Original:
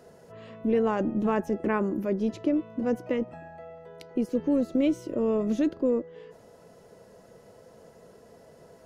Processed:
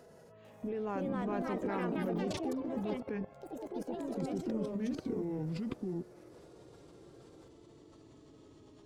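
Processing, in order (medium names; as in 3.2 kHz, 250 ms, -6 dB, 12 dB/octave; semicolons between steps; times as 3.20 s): pitch bend over the whole clip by -8 st starting unshifted; level held to a coarse grid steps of 21 dB; ever faster or slower copies 448 ms, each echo +4 st, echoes 3; trim +5.5 dB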